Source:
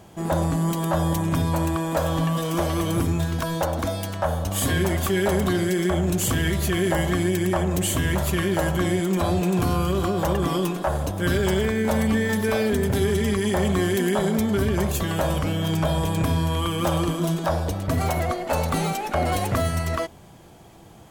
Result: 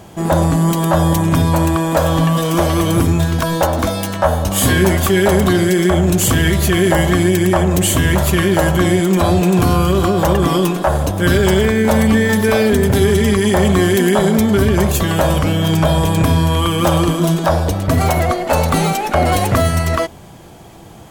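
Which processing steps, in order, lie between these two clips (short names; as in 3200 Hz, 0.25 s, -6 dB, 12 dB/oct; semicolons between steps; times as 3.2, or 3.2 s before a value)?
3.51–5 doubler 16 ms -7 dB; gain +9 dB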